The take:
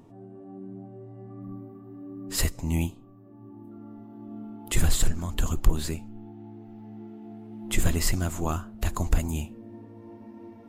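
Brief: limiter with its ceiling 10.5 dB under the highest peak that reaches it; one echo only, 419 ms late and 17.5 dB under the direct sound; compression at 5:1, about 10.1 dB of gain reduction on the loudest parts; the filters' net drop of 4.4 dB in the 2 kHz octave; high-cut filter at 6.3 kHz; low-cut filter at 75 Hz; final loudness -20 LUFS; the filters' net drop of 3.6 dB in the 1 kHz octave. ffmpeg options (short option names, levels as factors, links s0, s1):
-af "highpass=75,lowpass=6300,equalizer=f=1000:t=o:g=-3.5,equalizer=f=2000:t=o:g=-4.5,acompressor=threshold=0.02:ratio=5,alimiter=level_in=2.24:limit=0.0631:level=0:latency=1,volume=0.447,aecho=1:1:419:0.133,volume=14.1"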